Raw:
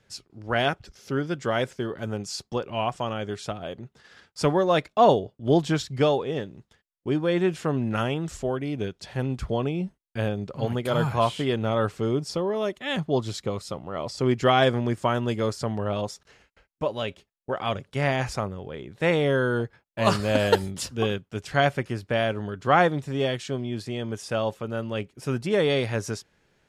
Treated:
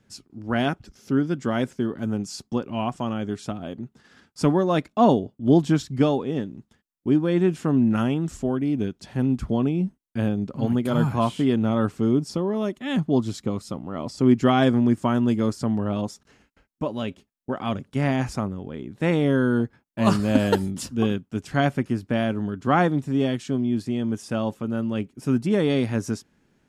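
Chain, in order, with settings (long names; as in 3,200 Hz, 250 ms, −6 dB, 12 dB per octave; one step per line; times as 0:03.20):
octave-band graphic EQ 250/500/2,000/4,000 Hz +11/−5/−3/−4 dB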